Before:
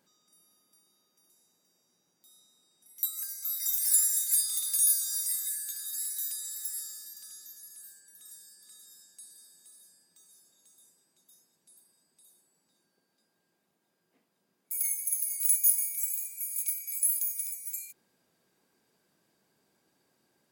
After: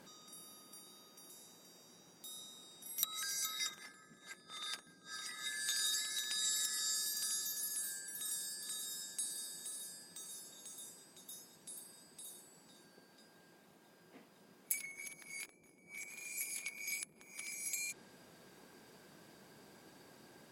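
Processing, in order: low-pass that closes with the level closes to 480 Hz, closed at -23.5 dBFS; treble shelf 5.1 kHz -5.5 dB; trim +14 dB

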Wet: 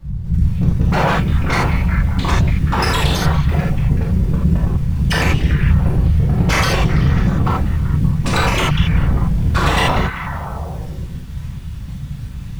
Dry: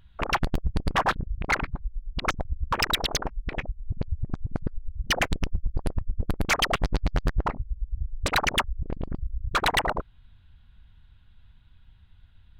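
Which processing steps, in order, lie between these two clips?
tape start-up on the opening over 1.21 s; low-pass 8.5 kHz; bass shelf 400 Hz +11 dB; in parallel at +2 dB: compression 8:1, threshold -27 dBFS, peak gain reduction 18.5 dB; on the sum: companded quantiser 6-bit; on a send: repeats whose band climbs or falls 193 ms, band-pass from 2.7 kHz, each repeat -0.7 oct, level -8 dB; on the sum: bit crusher 9-bit; saturation -18.5 dBFS, distortion -7 dB; whisper effect; gated-style reverb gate 110 ms flat, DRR -5.5 dB; trim +1.5 dB

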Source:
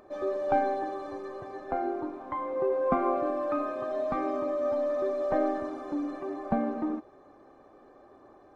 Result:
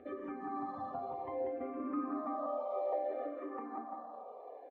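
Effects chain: low-pass 2.1 kHz 12 dB/octave; band-stop 1.5 kHz, Q 9.1; comb 4.2 ms, depth 63%; compression 8:1, threshold -39 dBFS, peak gain reduction 19.5 dB; time stretch by phase-locked vocoder 0.55×; high-pass sweep 100 Hz -> 540 Hz, 1.54–2.34 s; bouncing-ball echo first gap 190 ms, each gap 0.8×, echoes 5; on a send at -14.5 dB: reverberation RT60 0.90 s, pre-delay 4 ms; on the sum: barber-pole phaser -0.62 Hz; trim +2.5 dB

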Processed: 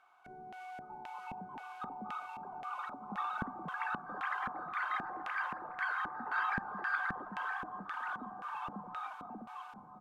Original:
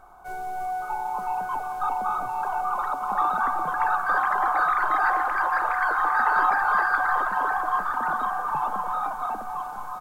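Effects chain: LFO band-pass square 1.9 Hz 210–2700 Hz

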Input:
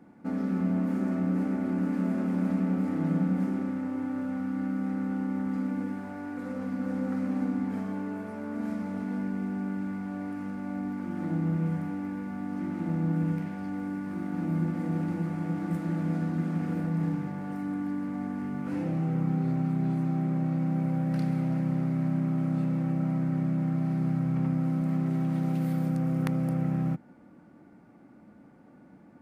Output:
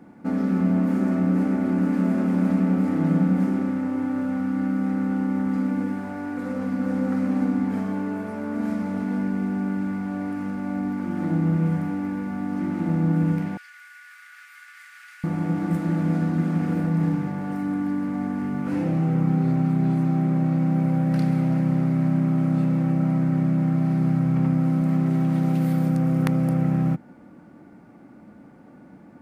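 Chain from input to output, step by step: 13.57–15.24 s: steep high-pass 1.4 kHz 48 dB/octave; trim +6.5 dB

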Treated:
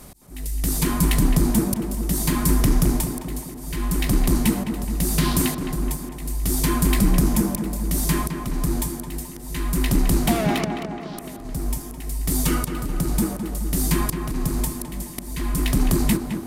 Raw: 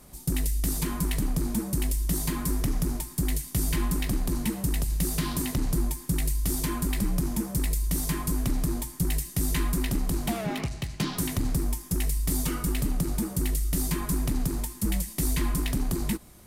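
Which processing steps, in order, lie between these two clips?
slow attack 632 ms; tape echo 213 ms, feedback 70%, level -5 dB, low-pass 1.9 kHz; trim +8.5 dB

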